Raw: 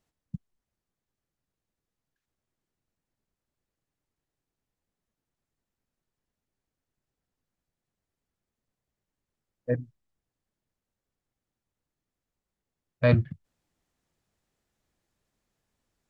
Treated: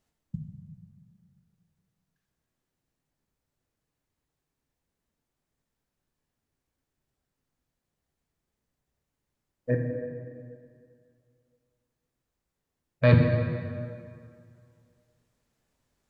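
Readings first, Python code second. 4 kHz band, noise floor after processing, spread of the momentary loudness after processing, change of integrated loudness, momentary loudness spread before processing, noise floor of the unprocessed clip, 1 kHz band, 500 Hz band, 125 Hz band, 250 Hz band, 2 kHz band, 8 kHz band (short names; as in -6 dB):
+3.0 dB, -85 dBFS, 22 LU, 0.0 dB, 21 LU, under -85 dBFS, +4.0 dB, +2.5 dB, +4.0 dB, +4.0 dB, +2.5 dB, n/a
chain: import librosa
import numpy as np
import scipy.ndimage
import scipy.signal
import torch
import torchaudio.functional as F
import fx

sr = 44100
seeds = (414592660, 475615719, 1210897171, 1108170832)

y = fx.rev_plate(x, sr, seeds[0], rt60_s=2.3, hf_ratio=0.7, predelay_ms=0, drr_db=1.5)
y = y * 10.0 ** (1.0 / 20.0)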